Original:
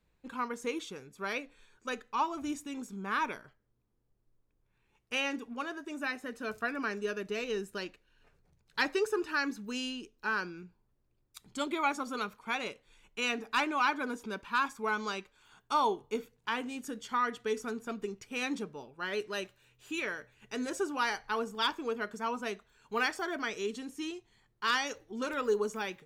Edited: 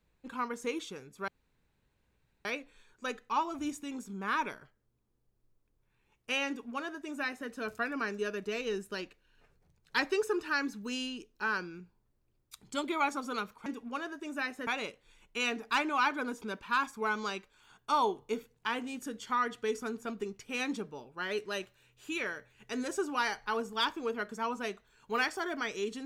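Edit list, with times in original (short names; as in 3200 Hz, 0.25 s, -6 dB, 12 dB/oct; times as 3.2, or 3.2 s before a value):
1.28 insert room tone 1.17 s
5.31–6.32 copy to 12.49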